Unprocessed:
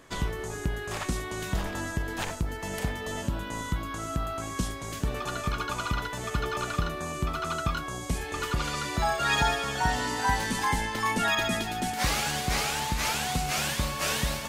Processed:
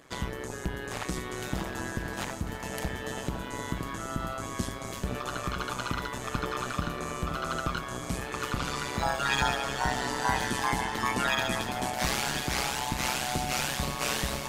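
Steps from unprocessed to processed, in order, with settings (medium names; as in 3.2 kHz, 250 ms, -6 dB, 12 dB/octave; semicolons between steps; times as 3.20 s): high-pass 67 Hz; AM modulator 130 Hz, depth 85%; echo whose repeats swap between lows and highs 523 ms, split 1.1 kHz, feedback 62%, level -7.5 dB; trim +2 dB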